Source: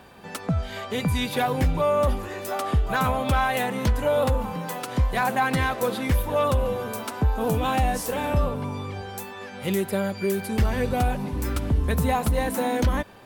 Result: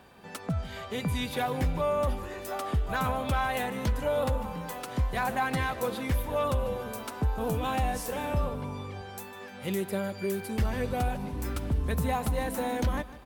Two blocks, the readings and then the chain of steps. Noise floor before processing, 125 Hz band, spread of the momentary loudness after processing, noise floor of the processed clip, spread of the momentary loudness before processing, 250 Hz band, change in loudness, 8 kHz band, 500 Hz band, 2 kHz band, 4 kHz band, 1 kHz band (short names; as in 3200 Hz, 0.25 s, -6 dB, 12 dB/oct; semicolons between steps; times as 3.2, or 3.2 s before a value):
-39 dBFS, -6.0 dB, 8 LU, -45 dBFS, 8 LU, -6.0 dB, -6.0 dB, -6.0 dB, -6.0 dB, -6.0 dB, -6.0 dB, -6.0 dB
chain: feedback echo 0.151 s, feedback 42%, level -16.5 dB; gain -6 dB